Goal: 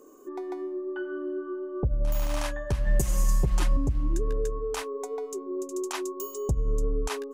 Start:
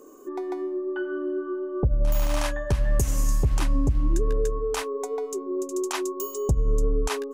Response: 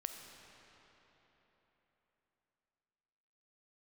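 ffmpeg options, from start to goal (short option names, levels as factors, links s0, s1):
-filter_complex "[0:a]asettb=1/sr,asplit=3[s0][s1][s2];[s0]atrim=end=2.864[s3];[s1]atrim=start=2.86:end=3.77,asetpts=PTS-STARTPTS,afade=t=in:d=0.004:c=qsin,afade=t=out:st=0.906:d=0.004:c=qsin,aecho=1:1:5.6:0.94,atrim=end_sample=40131[s4];[s2]atrim=start=3.766[s5];[s3][s4]acrossfade=d=0.004:c1=hsin:c2=qsin[s6];[s6][s5]acrossfade=d=0.004:c1=qsin:c2=hsin,volume=0.631"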